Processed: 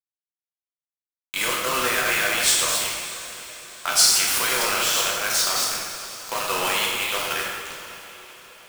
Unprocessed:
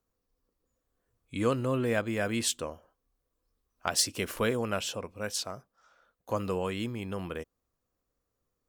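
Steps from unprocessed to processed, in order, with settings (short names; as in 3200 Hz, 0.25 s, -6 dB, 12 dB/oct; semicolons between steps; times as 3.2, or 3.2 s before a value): reverse delay 0.289 s, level -10.5 dB; HPF 1100 Hz 12 dB/oct; high shelf 2200 Hz +6 dB; in parallel at +1.5 dB: negative-ratio compressor -39 dBFS, ratio -0.5; on the sum: bit-crush 5-bit; on a send: diffused feedback echo 0.58 s, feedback 51%, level -15 dB; on the sum: plate-style reverb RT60 1.5 s, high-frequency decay 0.8×, DRR -4 dB; gain +2 dB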